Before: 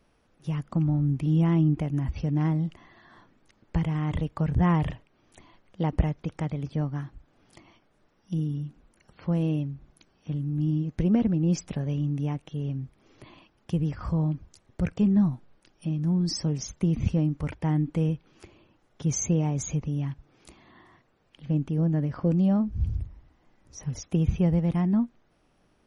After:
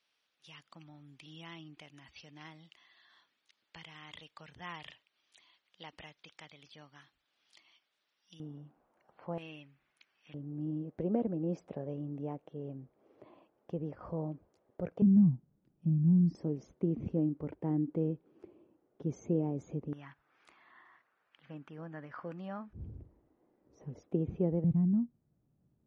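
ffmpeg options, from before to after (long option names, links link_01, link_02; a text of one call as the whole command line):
ffmpeg -i in.wav -af "asetnsamples=nb_out_samples=441:pad=0,asendcmd='8.4 bandpass f 760;9.38 bandpass f 2300;10.34 bandpass f 530;15.02 bandpass f 160;16.35 bandpass f 380;19.93 bandpass f 1500;22.73 bandpass f 400;24.64 bandpass f 130',bandpass=frequency=3700:width_type=q:width=1.7:csg=0" out.wav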